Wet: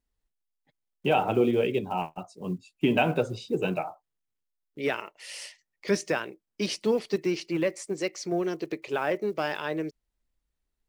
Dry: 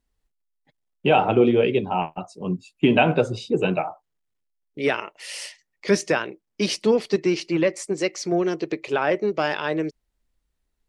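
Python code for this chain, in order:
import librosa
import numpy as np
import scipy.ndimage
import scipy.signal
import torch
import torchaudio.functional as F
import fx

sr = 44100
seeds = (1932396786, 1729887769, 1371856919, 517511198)

y = fx.block_float(x, sr, bits=7)
y = y * 10.0 ** (-6.0 / 20.0)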